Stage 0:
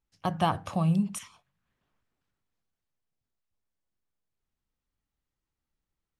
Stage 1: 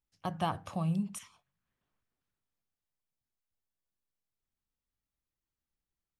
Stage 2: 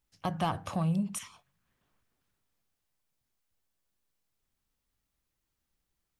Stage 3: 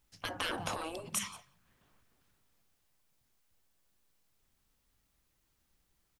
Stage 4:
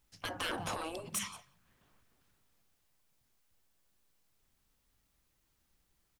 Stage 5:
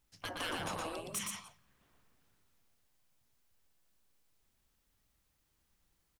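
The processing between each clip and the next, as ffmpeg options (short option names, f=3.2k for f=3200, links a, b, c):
-af "highshelf=f=9.5k:g=2.5,volume=-6.5dB"
-filter_complex "[0:a]asplit=2[a][b];[b]acompressor=threshold=-41dB:ratio=6,volume=1.5dB[c];[a][c]amix=inputs=2:normalize=0,asoftclip=type=tanh:threshold=-23dB,volume=1.5dB"
-af "aecho=1:1:176:0.0668,afftfilt=real='re*lt(hypot(re,im),0.0501)':imag='im*lt(hypot(re,im),0.0501)':win_size=1024:overlap=0.75,volume=6.5dB"
-af "volume=30dB,asoftclip=hard,volume=-30dB"
-af "aecho=1:1:118:0.668,volume=-2.5dB"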